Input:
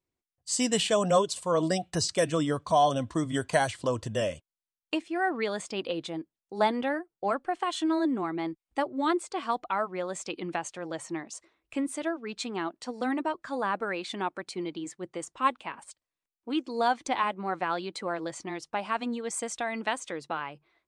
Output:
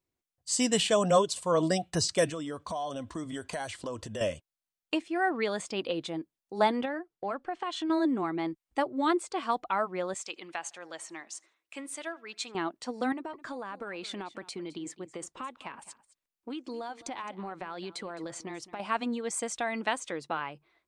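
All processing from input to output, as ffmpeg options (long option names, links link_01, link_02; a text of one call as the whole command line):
ffmpeg -i in.wav -filter_complex "[0:a]asettb=1/sr,asplit=3[link_01][link_02][link_03];[link_01]atrim=end=2.294[link_04];[link_02]atrim=start=2.29:end=4.21,asetpts=PTS-STARTPTS,afade=type=in:duration=0.004:curve=qsin,afade=type=out:start_time=1.916:duration=0.004:curve=qsin,acompressor=threshold=-33dB:ratio=4:attack=3.2:release=140:knee=1:detection=peak,equalizer=frequency=130:width_type=o:width=0.61:gain=-7[link_05];[link_03]atrim=start=4.206[link_06];[link_04][link_05]acrossfade=duration=0.004:curve1=hsin:curve2=qsin[link_07];[link_07][link_06]acrossfade=duration=0.004:curve1=qsin:curve2=hsin,asettb=1/sr,asplit=3[link_08][link_09][link_10];[link_08]atrim=end=6.854[link_11];[link_09]atrim=start=6.85:end=7.9,asetpts=PTS-STARTPTS,afade=type=in:duration=0.004:curve=qsin,afade=type=out:start_time=1.046:duration=0.004:curve=qsin,lowpass=5700,acompressor=threshold=-33dB:ratio=2:attack=3.2:release=140:knee=1:detection=peak[link_12];[link_10]atrim=start=7.896[link_13];[link_11][link_12]acrossfade=duration=0.004:curve1=hsin:curve2=qsin[link_14];[link_14][link_13]acrossfade=duration=0.004:curve1=qsin:curve2=hsin,asettb=1/sr,asplit=3[link_15][link_16][link_17];[link_15]atrim=end=10.144[link_18];[link_16]atrim=start=10.14:end=12.55,asetpts=PTS-STARTPTS,afade=type=in:duration=0.004:curve=qsin,afade=type=out:start_time=2.406:duration=0.004:curve=qsin,highpass=frequency=1300:poles=1,asplit=2[link_19][link_20];[link_20]adelay=80,lowpass=frequency=3100:poles=1,volume=-23dB,asplit=2[link_21][link_22];[link_22]adelay=80,lowpass=frequency=3100:poles=1,volume=0.46,asplit=2[link_23][link_24];[link_24]adelay=80,lowpass=frequency=3100:poles=1,volume=0.46[link_25];[link_19][link_21][link_23][link_25]amix=inputs=4:normalize=0,atrim=end_sample=106281[link_26];[link_17]atrim=start=12.546[link_27];[link_18][link_26]acrossfade=duration=0.004:curve1=hsin:curve2=qsin[link_28];[link_28][link_27]acrossfade=duration=0.004:curve1=qsin:curve2=hsin,asettb=1/sr,asplit=3[link_29][link_30][link_31];[link_29]atrim=end=13.124[link_32];[link_30]atrim=start=13.12:end=18.8,asetpts=PTS-STARTPTS,afade=type=in:duration=0.004:curve=qsin,afade=type=out:start_time=5.676:duration=0.004:curve=qsin,acompressor=threshold=-34dB:ratio=12:attack=3.2:release=140:knee=1:detection=peak,aecho=1:1:213:0.133,atrim=end_sample=250488[link_33];[link_31]atrim=start=18.796[link_34];[link_32][link_33]acrossfade=duration=0.004:curve1=hsin:curve2=qsin[link_35];[link_35][link_34]acrossfade=duration=0.004:curve1=qsin:curve2=hsin" out.wav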